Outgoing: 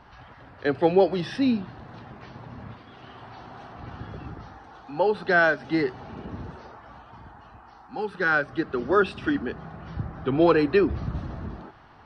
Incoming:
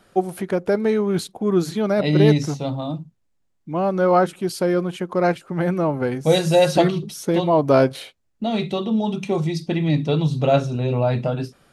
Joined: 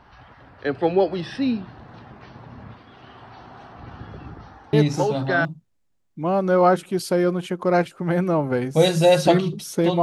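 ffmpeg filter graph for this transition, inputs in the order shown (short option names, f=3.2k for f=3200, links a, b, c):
-filter_complex "[0:a]apad=whole_dur=10.02,atrim=end=10.02,atrim=end=5.45,asetpts=PTS-STARTPTS[a];[1:a]atrim=start=2.23:end=7.52,asetpts=PTS-STARTPTS[b];[a][b]acrossfade=d=0.72:c1=log:c2=log"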